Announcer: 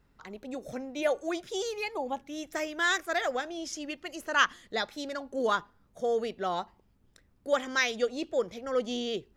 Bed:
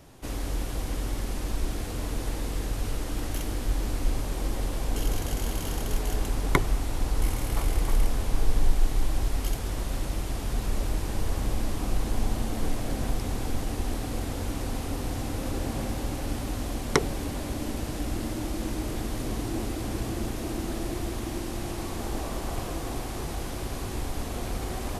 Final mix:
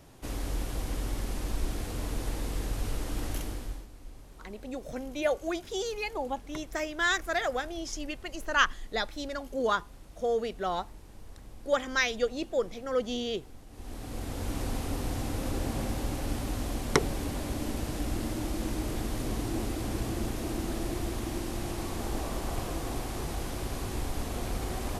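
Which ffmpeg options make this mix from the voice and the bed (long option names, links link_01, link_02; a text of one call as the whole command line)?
ffmpeg -i stem1.wav -i stem2.wav -filter_complex "[0:a]adelay=4200,volume=0dB[link_01];[1:a]volume=16.5dB,afade=type=out:start_time=3.32:duration=0.55:silence=0.125893,afade=type=in:start_time=13.7:duration=0.89:silence=0.112202[link_02];[link_01][link_02]amix=inputs=2:normalize=0" out.wav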